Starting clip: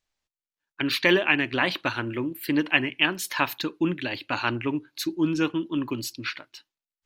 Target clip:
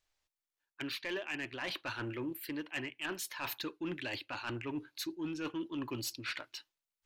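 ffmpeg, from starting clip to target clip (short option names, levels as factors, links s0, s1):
-af "equalizer=f=200:w=1.5:g=-8.5,areverse,acompressor=threshold=0.02:ratio=8,areverse,asoftclip=type=tanh:threshold=0.0335"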